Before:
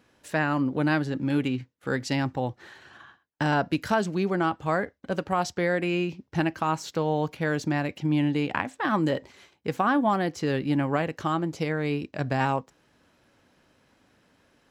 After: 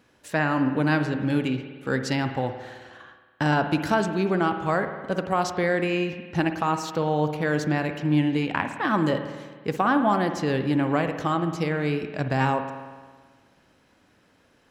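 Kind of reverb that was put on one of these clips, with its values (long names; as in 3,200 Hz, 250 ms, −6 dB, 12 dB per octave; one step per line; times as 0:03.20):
spring reverb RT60 1.5 s, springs 53 ms, chirp 60 ms, DRR 7.5 dB
level +1.5 dB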